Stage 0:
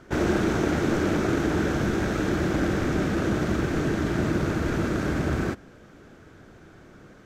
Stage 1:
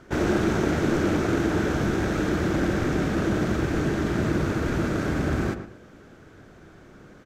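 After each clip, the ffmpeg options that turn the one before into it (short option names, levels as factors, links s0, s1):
-filter_complex "[0:a]asplit=2[s0][s1];[s1]adelay=112,lowpass=f=2100:p=1,volume=0.355,asplit=2[s2][s3];[s3]adelay=112,lowpass=f=2100:p=1,volume=0.3,asplit=2[s4][s5];[s5]adelay=112,lowpass=f=2100:p=1,volume=0.3[s6];[s0][s2][s4][s6]amix=inputs=4:normalize=0"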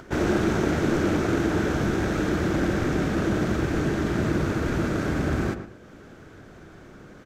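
-af "acompressor=mode=upward:threshold=0.01:ratio=2.5"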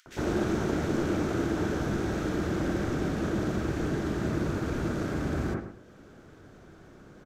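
-filter_complex "[0:a]acrossover=split=2100[s0][s1];[s0]adelay=60[s2];[s2][s1]amix=inputs=2:normalize=0,volume=0.562"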